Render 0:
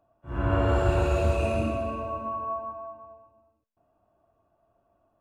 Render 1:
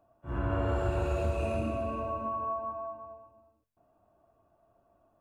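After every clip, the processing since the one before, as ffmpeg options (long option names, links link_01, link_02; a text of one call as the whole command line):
ffmpeg -i in.wav -af "equalizer=frequency=4300:width=0.57:gain=-3,bandreject=frequency=45.22:width_type=h:width=4,bandreject=frequency=90.44:width_type=h:width=4,bandreject=frequency=135.66:width_type=h:width=4,acompressor=threshold=-34dB:ratio=2,volume=1.5dB" out.wav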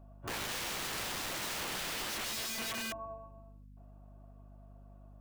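ffmpeg -i in.wav -af "aeval=exprs='val(0)+0.00178*(sin(2*PI*50*n/s)+sin(2*PI*2*50*n/s)/2+sin(2*PI*3*50*n/s)/3+sin(2*PI*4*50*n/s)/4+sin(2*PI*5*50*n/s)/5)':channel_layout=same,aeval=exprs='(mod(59.6*val(0)+1,2)-1)/59.6':channel_layout=same,volume=2dB" out.wav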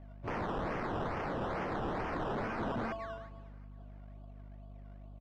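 ffmpeg -i in.wav -af "acrusher=samples=16:mix=1:aa=0.000001:lfo=1:lforange=9.6:lforate=2.3,adynamicsmooth=sensitivity=0.5:basefreq=1800,aecho=1:1:361|722|1083:0.0631|0.0341|0.0184,volume=4dB" out.wav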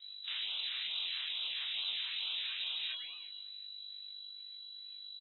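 ffmpeg -i in.wav -filter_complex "[0:a]flanger=delay=20:depth=2.6:speed=0.54,asplit=2[link_01][link_02];[link_02]adelay=20,volume=-13.5dB[link_03];[link_01][link_03]amix=inputs=2:normalize=0,lowpass=frequency=3400:width_type=q:width=0.5098,lowpass=frequency=3400:width_type=q:width=0.6013,lowpass=frequency=3400:width_type=q:width=0.9,lowpass=frequency=3400:width_type=q:width=2.563,afreqshift=-4000" out.wav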